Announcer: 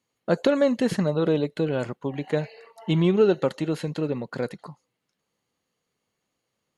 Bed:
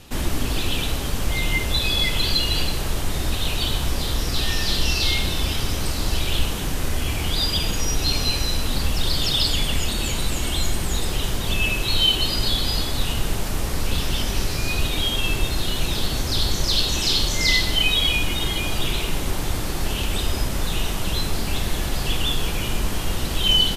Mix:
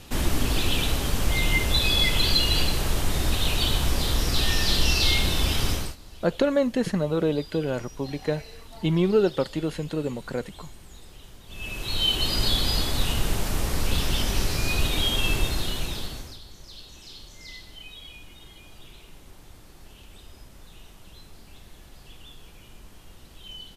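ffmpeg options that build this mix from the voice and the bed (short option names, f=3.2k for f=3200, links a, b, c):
-filter_complex "[0:a]adelay=5950,volume=-1.5dB[a];[1:a]volume=21dB,afade=t=out:st=5.7:d=0.26:silence=0.0749894,afade=t=in:st=11.48:d=0.94:silence=0.0841395,afade=t=out:st=15.35:d=1.04:silence=0.0749894[b];[a][b]amix=inputs=2:normalize=0"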